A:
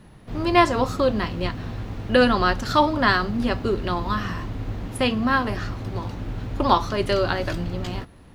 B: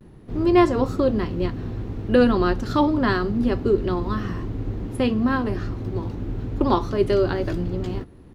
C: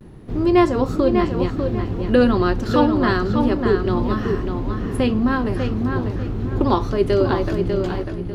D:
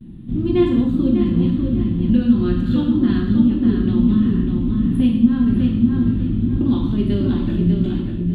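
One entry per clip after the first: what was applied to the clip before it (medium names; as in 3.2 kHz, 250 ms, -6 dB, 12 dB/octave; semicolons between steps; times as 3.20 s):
FFT filter 210 Hz 0 dB, 380 Hz +5 dB, 600 Hz -5 dB, 3 kHz -9 dB; vibrato 0.3 Hz 26 cents; trim +1.5 dB
in parallel at -2.5 dB: compression, threshold -28 dBFS, peak gain reduction 15.5 dB; on the sum: filtered feedback delay 596 ms, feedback 29%, low-pass 4.8 kHz, level -5.5 dB
FFT filter 110 Hz 0 dB, 150 Hz +5 dB, 280 Hz +7 dB, 410 Hz -16 dB, 800 Hz -18 dB, 2.2 kHz -11 dB, 3.5 kHz -1 dB, 5.4 kHz -27 dB, 8.3 kHz -13 dB; compression, threshold -15 dBFS, peak gain reduction 7.5 dB; gated-style reverb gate 270 ms falling, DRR -1 dB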